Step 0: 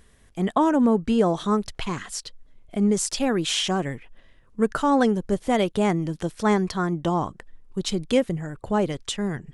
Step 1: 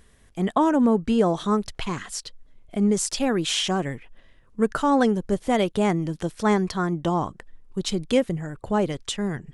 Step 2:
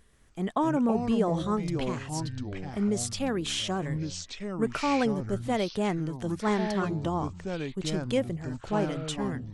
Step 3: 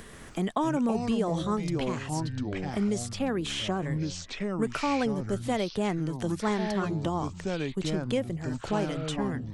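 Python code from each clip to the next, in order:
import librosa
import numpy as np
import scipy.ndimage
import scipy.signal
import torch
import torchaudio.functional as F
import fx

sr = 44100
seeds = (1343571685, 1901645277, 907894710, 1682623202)

y1 = x
y2 = fx.echo_pitch(y1, sr, ms=134, semitones=-5, count=3, db_per_echo=-6.0)
y2 = y2 * librosa.db_to_amplitude(-6.5)
y3 = fx.band_squash(y2, sr, depth_pct=70)
y3 = y3 * librosa.db_to_amplitude(-1.0)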